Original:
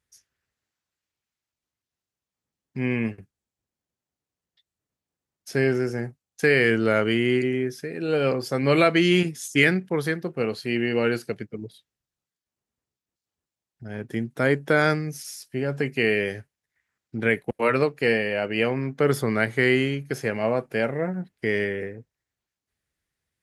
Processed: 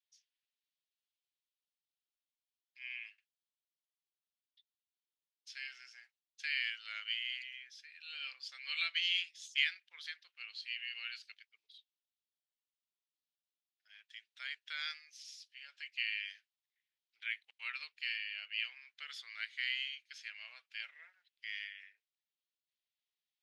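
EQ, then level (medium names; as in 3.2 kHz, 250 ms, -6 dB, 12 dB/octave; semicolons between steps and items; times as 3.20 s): ladder high-pass 2.7 kHz, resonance 40%; distance through air 170 m; +3.5 dB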